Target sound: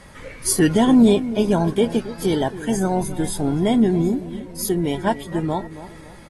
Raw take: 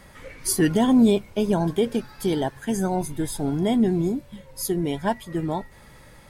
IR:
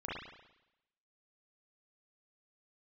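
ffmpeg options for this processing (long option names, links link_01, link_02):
-filter_complex "[0:a]asplit=2[link_01][link_02];[link_02]adelay=277,lowpass=frequency=1100:poles=1,volume=-13.5dB,asplit=2[link_03][link_04];[link_04]adelay=277,lowpass=frequency=1100:poles=1,volume=0.44,asplit=2[link_05][link_06];[link_06]adelay=277,lowpass=frequency=1100:poles=1,volume=0.44,asplit=2[link_07][link_08];[link_08]adelay=277,lowpass=frequency=1100:poles=1,volume=0.44[link_09];[link_01][link_03][link_05][link_07][link_09]amix=inputs=5:normalize=0,volume=3.5dB" -ar 32000 -c:a aac -b:a 32k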